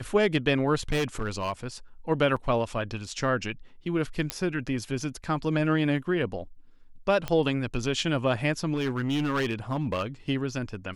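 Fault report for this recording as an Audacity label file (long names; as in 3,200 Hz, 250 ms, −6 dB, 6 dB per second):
0.910000	1.640000	clipping −23 dBFS
2.360000	2.370000	drop-out 5.3 ms
4.300000	4.300000	click −10 dBFS
7.280000	7.280000	click −15 dBFS
8.730000	10.030000	clipping −23 dBFS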